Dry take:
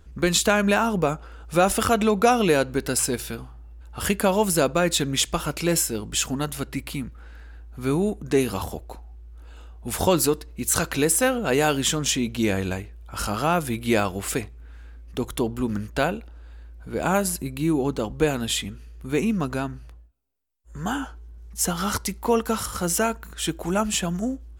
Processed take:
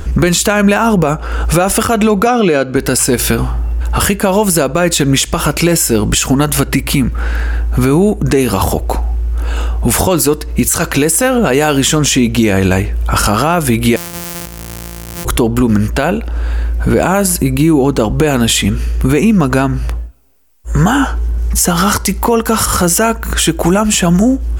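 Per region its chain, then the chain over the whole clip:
0:02.27–0:02.76: band-pass filter 110–5,500 Hz + notch comb filter 910 Hz
0:13.96–0:15.25: samples sorted by size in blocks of 256 samples + first-order pre-emphasis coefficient 0.8
whole clip: parametric band 3,800 Hz −4 dB 0.44 octaves; downward compressor 6 to 1, threshold −34 dBFS; boost into a limiter +28.5 dB; level −1 dB

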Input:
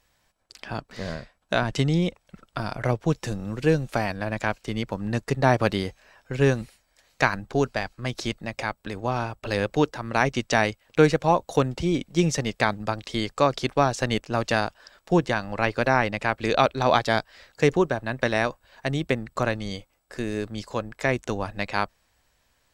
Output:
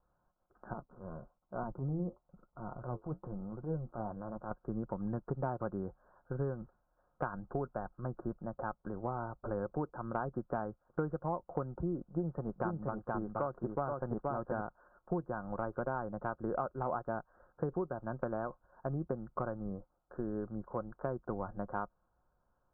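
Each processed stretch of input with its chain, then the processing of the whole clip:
0:00.73–0:04.51: flat-topped bell 3,500 Hz −15.5 dB 2.4 octaves + transient designer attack −10 dB, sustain +1 dB + flanger 1.1 Hz, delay 4.1 ms, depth 6.4 ms, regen −64%
0:12.01–0:14.61: single-tap delay 475 ms −4 dB + highs frequency-modulated by the lows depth 0.17 ms
whole clip: Butterworth low-pass 1,500 Hz 96 dB per octave; comb filter 5.6 ms, depth 31%; downward compressor, threshold −25 dBFS; level −7 dB

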